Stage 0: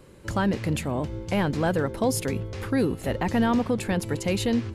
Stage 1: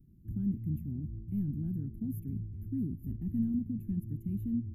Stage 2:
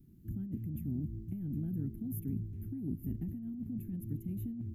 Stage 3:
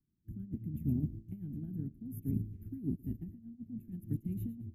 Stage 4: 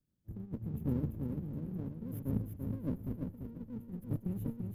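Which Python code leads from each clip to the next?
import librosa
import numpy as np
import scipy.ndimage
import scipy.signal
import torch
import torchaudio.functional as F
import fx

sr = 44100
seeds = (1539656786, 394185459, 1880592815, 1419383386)

y1 = scipy.signal.sosfilt(scipy.signal.cheby2(4, 40, [490.0, 9100.0], 'bandstop', fs=sr, output='sos'), x)
y1 = y1 * 10.0 ** (-6.0 / 20.0)
y2 = fx.low_shelf(y1, sr, hz=210.0, db=-10.5)
y2 = fx.over_compress(y2, sr, threshold_db=-42.0, ratio=-1.0)
y2 = y2 * 10.0 ** (5.0 / 20.0)
y3 = fx.rotary(y2, sr, hz=0.65)
y3 = fx.echo_feedback(y3, sr, ms=113, feedback_pct=30, wet_db=-12)
y3 = fx.upward_expand(y3, sr, threshold_db=-51.0, expansion=2.5)
y3 = y3 * 10.0 ** (5.5 / 20.0)
y4 = fx.lower_of_two(y3, sr, delay_ms=0.63)
y4 = fx.echo_feedback(y4, sr, ms=340, feedback_pct=22, wet_db=-5)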